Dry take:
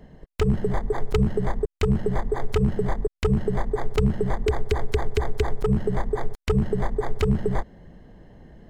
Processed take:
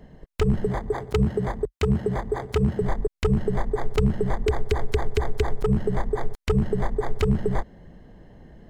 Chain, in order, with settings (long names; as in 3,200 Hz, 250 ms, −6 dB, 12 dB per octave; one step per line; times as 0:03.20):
0:00.66–0:02.82: high-pass filter 43 Hz 24 dB per octave